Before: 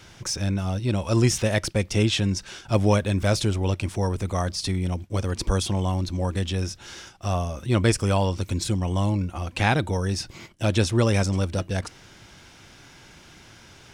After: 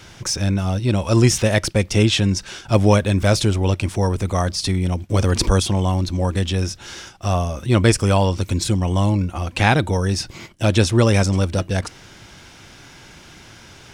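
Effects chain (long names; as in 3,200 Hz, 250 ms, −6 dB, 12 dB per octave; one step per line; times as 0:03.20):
0:05.09–0:05.60: envelope flattener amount 50%
level +5.5 dB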